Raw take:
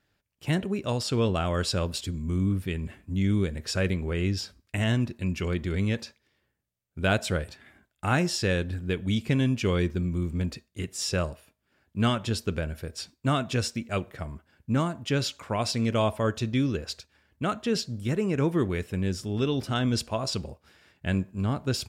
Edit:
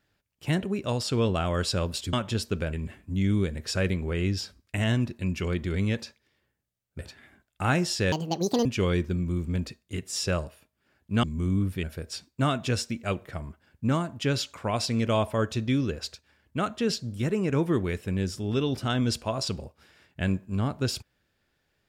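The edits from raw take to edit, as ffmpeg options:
-filter_complex "[0:a]asplit=8[a][b][c][d][e][f][g][h];[a]atrim=end=2.132[i];[b]atrim=start=12.088:end=12.692[j];[c]atrim=start=2.728:end=6.992[k];[d]atrim=start=7.418:end=8.554[l];[e]atrim=start=8.55:end=9.51,asetpts=PTS-STARTPTS,asetrate=79380,aresample=44100[m];[f]atrim=start=9.506:end=12.092[n];[g]atrim=start=2.128:end=2.732[o];[h]atrim=start=12.688[p];[i][j]acrossfade=d=0.004:c1=hsin:c2=hsin[q];[q][k]acrossfade=d=0.004:c1=hsin:c2=hsin[r];[r][l]acrossfade=d=0.004:c1=hsin:c2=hsin[s];[s][m]acrossfade=d=0.004:c1=hsin:c2=hsin[t];[t][n]acrossfade=d=0.004:c1=hsin:c2=hsin[u];[u][o]acrossfade=d=0.004:c1=hsin:c2=hsin[v];[v][p]acrossfade=d=0.004:c1=hsin:c2=hsin"

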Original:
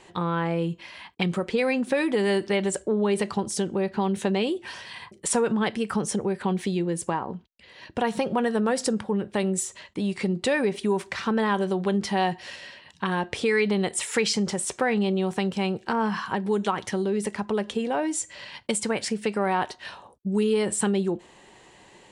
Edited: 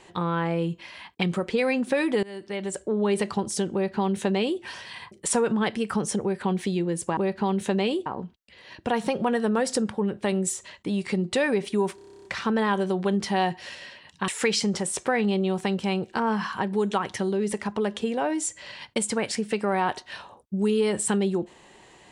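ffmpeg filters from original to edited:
-filter_complex "[0:a]asplit=15[a][b][c][d][e][f][g][h][i][j][k][l][m][n][o];[a]atrim=end=2.23,asetpts=PTS-STARTPTS,afade=t=out:st=2.226:d=0.004:c=hsin:silence=0.0668344[p];[b]atrim=start=2.23:end=7.172,asetpts=PTS-STARTPTS,afade=t=in:d=0.85:silence=0.0668344[q];[c]atrim=start=3.728:end=4.622[r];[d]atrim=start=7.168:end=11.092[s];[e]atrim=start=11.058:end=11.092[t];[f]atrim=start=11.058:end=11.092[u];[g]atrim=start=11.058:end=11.092[v];[h]atrim=start=11.058:end=11.092[w];[i]atrim=start=11.058:end=11.092[x];[j]atrim=start=11.058:end=11.092[y];[k]atrim=start=11.058:end=11.092[z];[l]atrim=start=11.058:end=11.092[aa];[m]atrim=start=11.058:end=11.092[ab];[n]atrim=start=11.058:end=13.092[ac];[o]atrim=start=14.008[ad];[p][q]concat=n=2:v=0:a=1[ae];[ae][r]acrossfade=d=0.004:c1=hsin:c2=hsin[af];[af][s]acrossfade=d=0.004:c1=hsin:c2=hsin[ag];[ag][t]acrossfade=d=0.004:c1=hsin:c2=hsin[ah];[ah][u]acrossfade=d=0.004:c1=hsin:c2=hsin[ai];[ai][v]acrossfade=d=0.004:c1=hsin:c2=hsin[aj];[aj][w]acrossfade=d=0.004:c1=hsin:c2=hsin[ak];[ak][x]acrossfade=d=0.004:c1=hsin:c2=hsin[al];[al][y]acrossfade=d=0.004:c1=hsin:c2=hsin[am];[am][z]acrossfade=d=0.004:c1=hsin:c2=hsin[an];[an][aa]acrossfade=d=0.004:c1=hsin:c2=hsin[ao];[ao][ab]acrossfade=d=0.004:c1=hsin:c2=hsin[ap];[ap][ac]acrossfade=d=0.004:c1=hsin:c2=hsin[aq];[aq][ad]acrossfade=d=0.004:c1=hsin:c2=hsin"

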